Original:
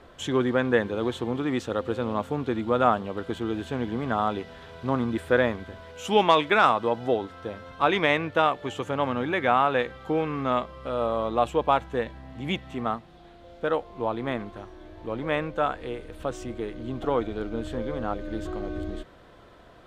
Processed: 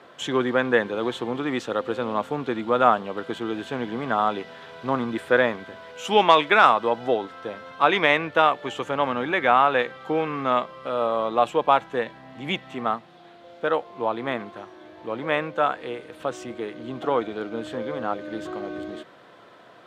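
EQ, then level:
high-pass filter 120 Hz 24 dB per octave
low-shelf EQ 410 Hz −8.5 dB
high-shelf EQ 5,800 Hz −7 dB
+5.5 dB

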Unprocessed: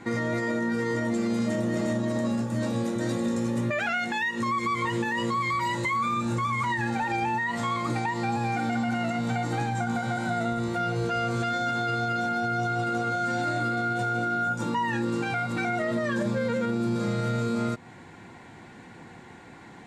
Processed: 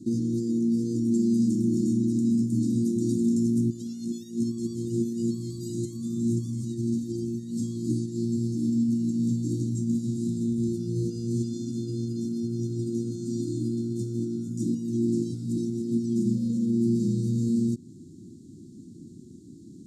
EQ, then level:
high-pass filter 63 Hz
inverse Chebyshev band-stop filter 580–2,500 Hz, stop band 50 dB
parametric band 360 Hz +12 dB 1 octave
+1.0 dB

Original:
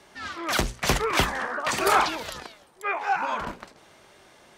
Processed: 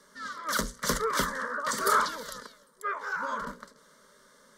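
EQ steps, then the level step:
parametric band 70 Hz −11 dB 1.6 octaves
parametric band 750 Hz −14.5 dB 0.34 octaves
phaser with its sweep stopped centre 510 Hz, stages 8
0.0 dB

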